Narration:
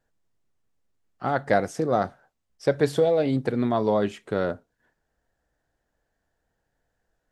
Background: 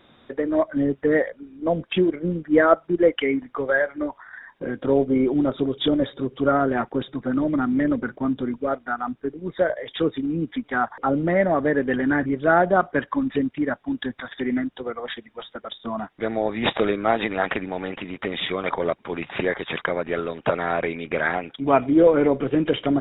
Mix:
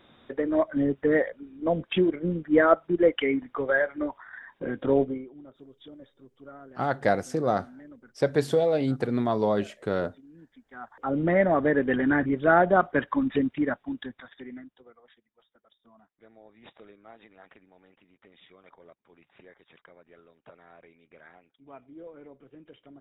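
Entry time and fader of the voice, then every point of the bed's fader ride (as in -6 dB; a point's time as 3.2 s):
5.55 s, -2.0 dB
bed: 5.04 s -3 dB
5.29 s -26.5 dB
10.63 s -26.5 dB
11.21 s -2 dB
13.64 s -2 dB
15.2 s -29.5 dB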